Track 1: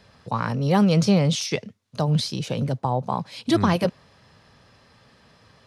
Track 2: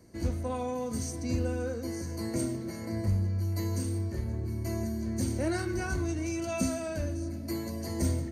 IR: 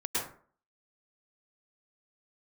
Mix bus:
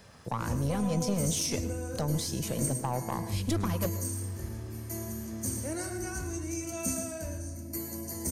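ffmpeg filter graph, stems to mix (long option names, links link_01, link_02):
-filter_complex "[0:a]highshelf=frequency=4100:gain=-5.5,acompressor=threshold=-36dB:ratio=2,aeval=exprs='(tanh(17.8*val(0)+0.55)-tanh(0.55))/17.8':channel_layout=same,volume=2dB,asplit=2[link_01][link_02];[link_02]volume=-18.5dB[link_03];[1:a]adelay=250,volume=-7.5dB,asplit=2[link_04][link_05];[link_05]volume=-10.5dB[link_06];[2:a]atrim=start_sample=2205[link_07];[link_03][link_06]amix=inputs=2:normalize=0[link_08];[link_08][link_07]afir=irnorm=-1:irlink=0[link_09];[link_01][link_04][link_09]amix=inputs=3:normalize=0,aexciter=amount=4.2:drive=6:freq=5900"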